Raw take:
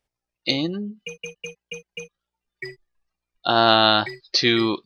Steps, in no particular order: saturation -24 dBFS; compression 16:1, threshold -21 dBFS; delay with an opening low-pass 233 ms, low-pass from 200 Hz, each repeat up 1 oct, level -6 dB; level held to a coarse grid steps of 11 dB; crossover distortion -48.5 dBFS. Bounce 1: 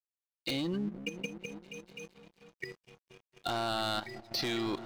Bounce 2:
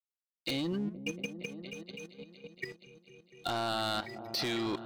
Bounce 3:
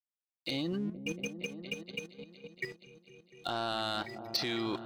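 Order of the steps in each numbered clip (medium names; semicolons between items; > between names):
compression > saturation > delay with an opening low-pass > crossover distortion > level held to a coarse grid; crossover distortion > compression > delay with an opening low-pass > saturation > level held to a coarse grid; crossover distortion > compression > delay with an opening low-pass > level held to a coarse grid > saturation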